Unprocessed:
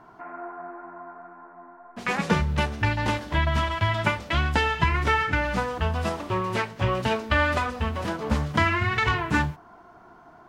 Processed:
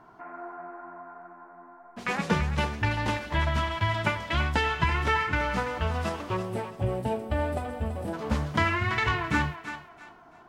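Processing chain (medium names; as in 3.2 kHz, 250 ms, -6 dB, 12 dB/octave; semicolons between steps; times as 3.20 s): time-frequency box 6.37–8.13 s, 890–7500 Hz -13 dB; thinning echo 334 ms, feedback 28%, high-pass 540 Hz, level -9 dB; trim -3 dB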